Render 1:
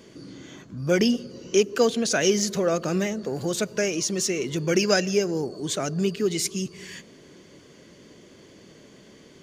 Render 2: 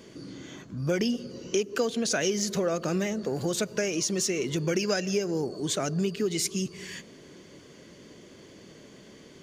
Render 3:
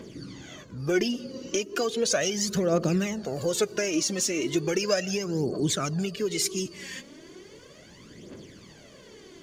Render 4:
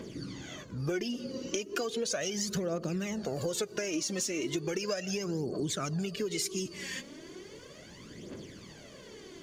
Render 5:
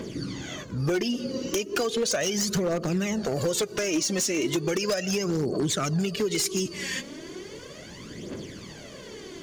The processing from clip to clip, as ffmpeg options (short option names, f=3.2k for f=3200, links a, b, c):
-af "acompressor=threshold=-24dB:ratio=4"
-af "aphaser=in_gain=1:out_gain=1:delay=3.9:decay=0.62:speed=0.36:type=triangular"
-af "acompressor=threshold=-30dB:ratio=6"
-af "aeval=exprs='0.0473*(abs(mod(val(0)/0.0473+3,4)-2)-1)':c=same,volume=7.5dB"